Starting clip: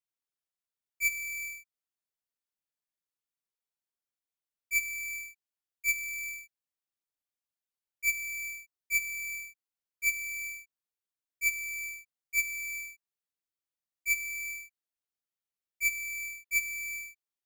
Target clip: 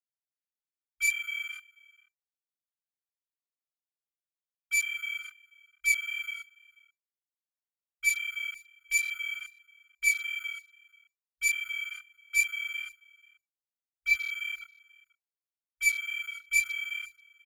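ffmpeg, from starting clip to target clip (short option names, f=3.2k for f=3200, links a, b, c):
-af "flanger=delay=20:depth=2.3:speed=2.4,afwtdn=0.00631,aecho=1:1:486:0.0631,volume=7dB"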